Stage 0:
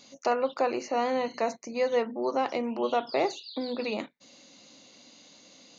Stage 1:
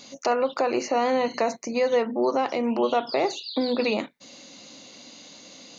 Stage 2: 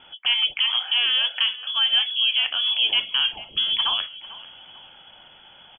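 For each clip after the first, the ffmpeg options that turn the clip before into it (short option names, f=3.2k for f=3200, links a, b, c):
-af "alimiter=limit=-22dB:level=0:latency=1:release=156,volume=8dB"
-filter_complex "[0:a]lowpass=f=3.1k:t=q:w=0.5098,lowpass=f=3.1k:t=q:w=0.6013,lowpass=f=3.1k:t=q:w=0.9,lowpass=f=3.1k:t=q:w=2.563,afreqshift=-3600,asplit=4[a][b][c][d];[b]adelay=445,afreqshift=-41,volume=-17.5dB[e];[c]adelay=890,afreqshift=-82,volume=-25.7dB[f];[d]adelay=1335,afreqshift=-123,volume=-33.9dB[g];[a][e][f][g]amix=inputs=4:normalize=0,volume=1.5dB"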